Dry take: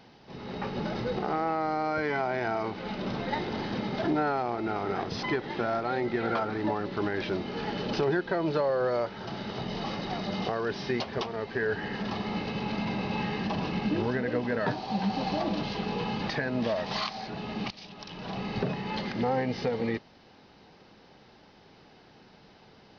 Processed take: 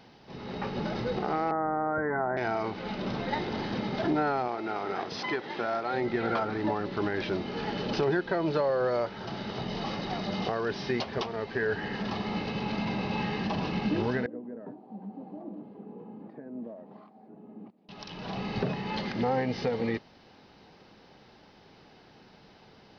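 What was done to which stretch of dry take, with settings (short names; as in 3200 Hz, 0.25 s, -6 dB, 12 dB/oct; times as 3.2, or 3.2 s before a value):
1.51–2.37 steep low-pass 1900 Hz 96 dB/oct
4.48–5.94 HPF 360 Hz 6 dB/oct
14.26–17.89 ladder band-pass 320 Hz, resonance 35%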